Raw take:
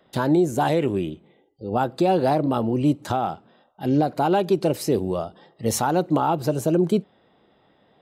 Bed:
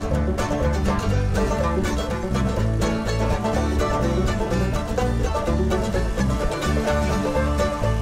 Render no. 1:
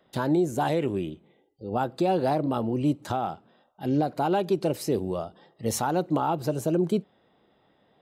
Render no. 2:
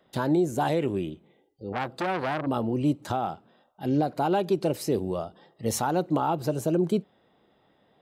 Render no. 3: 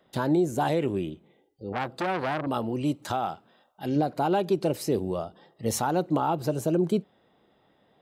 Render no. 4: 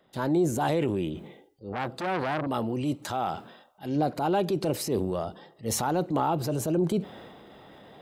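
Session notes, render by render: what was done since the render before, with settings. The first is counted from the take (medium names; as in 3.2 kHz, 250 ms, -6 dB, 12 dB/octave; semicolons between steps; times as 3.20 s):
trim -4.5 dB
1.72–2.47 s: transformer saturation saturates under 1.4 kHz
2.47–3.96 s: tilt shelf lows -3.5 dB, about 750 Hz
reverse; upward compressor, threshold -36 dBFS; reverse; transient shaper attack -6 dB, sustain +5 dB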